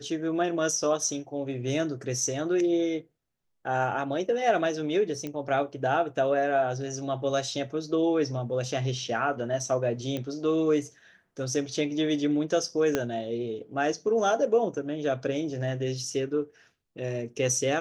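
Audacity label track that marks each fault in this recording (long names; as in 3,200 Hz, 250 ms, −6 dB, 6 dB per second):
5.270000	5.270000	click −21 dBFS
10.170000	10.170000	click −19 dBFS
12.950000	12.950000	click −11 dBFS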